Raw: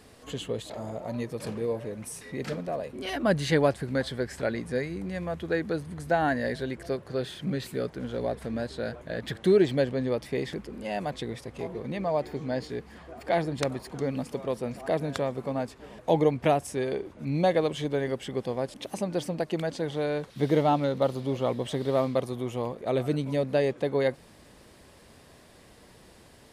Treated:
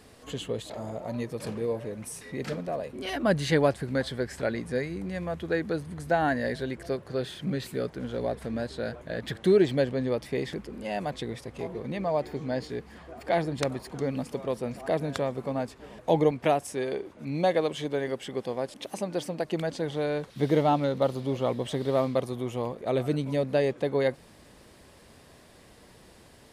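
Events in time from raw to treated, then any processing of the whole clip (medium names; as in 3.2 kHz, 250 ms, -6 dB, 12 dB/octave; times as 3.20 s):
16.31–19.45 s: bass shelf 130 Hz -10.5 dB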